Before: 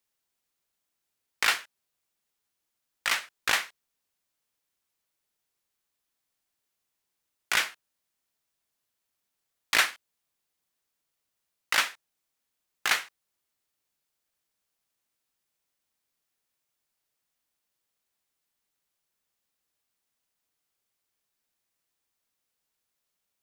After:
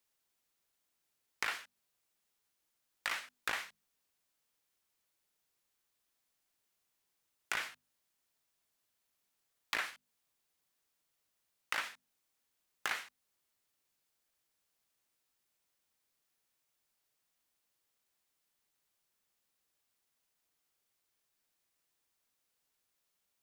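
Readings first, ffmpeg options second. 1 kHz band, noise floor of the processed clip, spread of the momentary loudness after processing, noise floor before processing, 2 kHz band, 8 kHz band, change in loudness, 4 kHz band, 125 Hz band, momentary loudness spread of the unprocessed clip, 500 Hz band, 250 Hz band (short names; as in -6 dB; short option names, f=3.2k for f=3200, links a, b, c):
-10.0 dB, -83 dBFS, 8 LU, -83 dBFS, -11.0 dB, -14.5 dB, -12.0 dB, -14.0 dB, n/a, 9 LU, -9.5 dB, -9.5 dB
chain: -filter_complex "[0:a]acrossover=split=2600[a][b];[b]acompressor=threshold=-31dB:ratio=4:attack=1:release=60[c];[a][c]amix=inputs=2:normalize=0,bandreject=f=50:t=h:w=6,bandreject=f=100:t=h:w=6,bandreject=f=150:t=h:w=6,bandreject=f=200:t=h:w=6,bandreject=f=250:t=h:w=6,acompressor=threshold=-35dB:ratio=4"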